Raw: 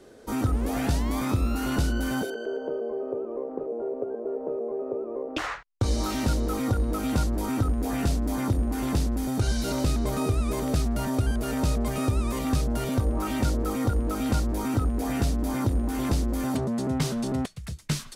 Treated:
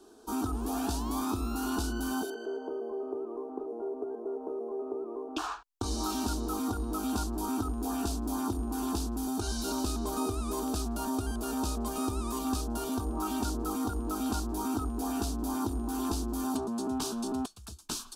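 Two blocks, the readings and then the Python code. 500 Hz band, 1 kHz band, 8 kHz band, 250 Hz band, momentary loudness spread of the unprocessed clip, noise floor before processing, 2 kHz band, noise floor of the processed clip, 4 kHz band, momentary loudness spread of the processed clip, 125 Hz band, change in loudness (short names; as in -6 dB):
-6.0 dB, -2.0 dB, -0.5 dB, -4.5 dB, 5 LU, -40 dBFS, -8.5 dB, -47 dBFS, -3.0 dB, 5 LU, -12.0 dB, -6.0 dB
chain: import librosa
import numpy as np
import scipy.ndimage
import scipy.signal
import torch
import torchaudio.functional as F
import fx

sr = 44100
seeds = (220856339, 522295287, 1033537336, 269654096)

y = fx.low_shelf(x, sr, hz=200.0, db=-8.5)
y = fx.fixed_phaser(y, sr, hz=540.0, stages=6)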